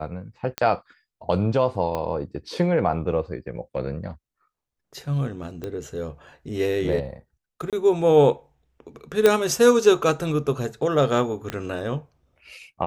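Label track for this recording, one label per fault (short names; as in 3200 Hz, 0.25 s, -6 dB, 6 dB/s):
0.580000	0.580000	pop -10 dBFS
1.950000	1.950000	pop -15 dBFS
5.640000	5.640000	pop -19 dBFS
7.700000	7.730000	gap 27 ms
9.260000	9.260000	pop -4 dBFS
11.500000	11.500000	pop -13 dBFS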